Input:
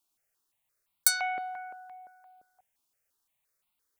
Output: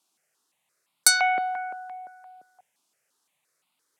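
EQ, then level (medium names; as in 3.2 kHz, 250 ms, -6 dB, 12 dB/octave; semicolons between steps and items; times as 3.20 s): high-pass 140 Hz 24 dB/octave; low-pass 9.8 kHz 12 dB/octave; +9.0 dB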